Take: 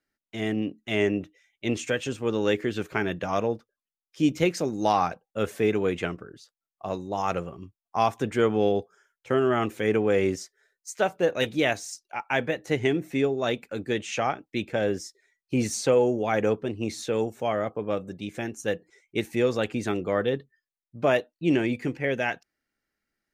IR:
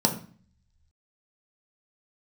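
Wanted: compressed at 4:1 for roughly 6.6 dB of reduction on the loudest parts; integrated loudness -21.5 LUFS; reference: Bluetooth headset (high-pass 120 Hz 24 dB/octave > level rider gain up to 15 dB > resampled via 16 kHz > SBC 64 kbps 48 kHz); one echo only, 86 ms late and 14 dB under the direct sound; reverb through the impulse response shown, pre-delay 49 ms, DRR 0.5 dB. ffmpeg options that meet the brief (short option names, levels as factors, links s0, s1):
-filter_complex "[0:a]acompressor=threshold=0.0562:ratio=4,aecho=1:1:86:0.2,asplit=2[s0][s1];[1:a]atrim=start_sample=2205,adelay=49[s2];[s1][s2]afir=irnorm=-1:irlink=0,volume=0.237[s3];[s0][s3]amix=inputs=2:normalize=0,highpass=f=120:w=0.5412,highpass=f=120:w=1.3066,dynaudnorm=m=5.62,aresample=16000,aresample=44100,volume=0.841" -ar 48000 -c:a sbc -b:a 64k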